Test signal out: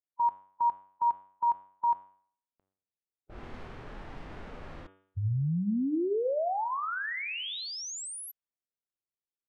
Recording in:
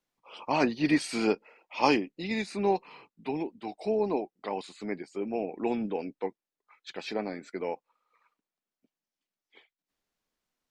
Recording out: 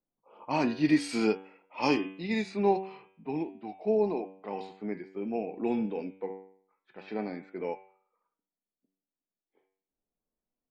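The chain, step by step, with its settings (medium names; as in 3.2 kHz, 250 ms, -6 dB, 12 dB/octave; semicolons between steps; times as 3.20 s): level-controlled noise filter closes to 640 Hz, open at -27 dBFS; de-hum 95.69 Hz, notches 38; harmonic-percussive split percussive -10 dB; trim +2 dB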